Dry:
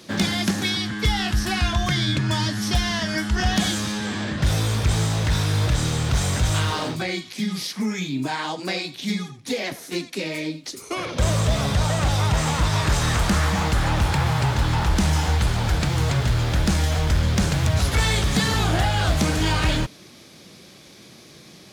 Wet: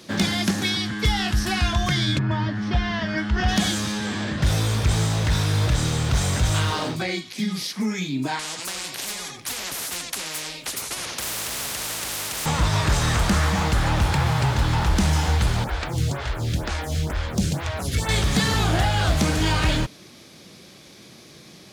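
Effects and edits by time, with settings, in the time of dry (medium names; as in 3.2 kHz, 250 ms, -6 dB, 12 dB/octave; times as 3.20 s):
2.18–3.47 s: low-pass 1.6 kHz -> 3.9 kHz
8.39–12.46 s: spectrum-flattening compressor 10:1
15.64–18.09 s: lamp-driven phase shifter 2.1 Hz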